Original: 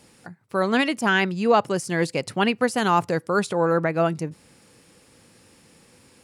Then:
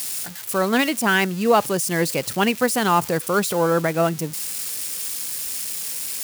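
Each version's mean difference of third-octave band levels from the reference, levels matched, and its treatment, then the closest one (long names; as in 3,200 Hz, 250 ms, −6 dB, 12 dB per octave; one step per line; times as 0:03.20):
9.0 dB: spike at every zero crossing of −22.5 dBFS
level +1.5 dB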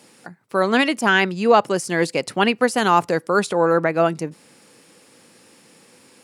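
1.5 dB: high-pass filter 200 Hz 12 dB per octave
level +4 dB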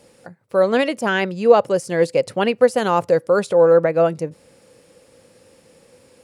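4.5 dB: parametric band 530 Hz +13 dB 0.54 octaves
level −1 dB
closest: second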